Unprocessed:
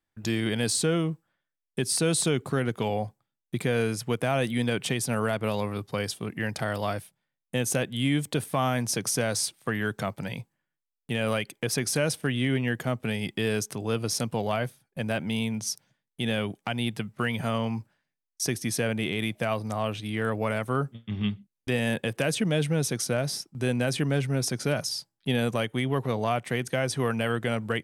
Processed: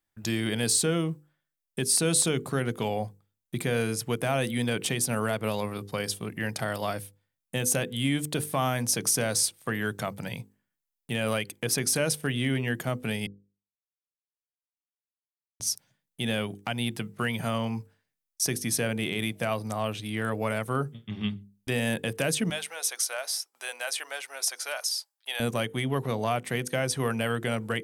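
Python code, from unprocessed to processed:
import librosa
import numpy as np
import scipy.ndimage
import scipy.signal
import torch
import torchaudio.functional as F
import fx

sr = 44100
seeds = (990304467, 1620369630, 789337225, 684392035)

y = fx.highpass(x, sr, hz=700.0, slope=24, at=(22.5, 25.4))
y = fx.edit(y, sr, fx.silence(start_s=13.27, length_s=2.33), tone=tone)
y = fx.high_shelf(y, sr, hz=7400.0, db=8.5)
y = fx.hum_notches(y, sr, base_hz=50, count=10)
y = y * librosa.db_to_amplitude(-1.0)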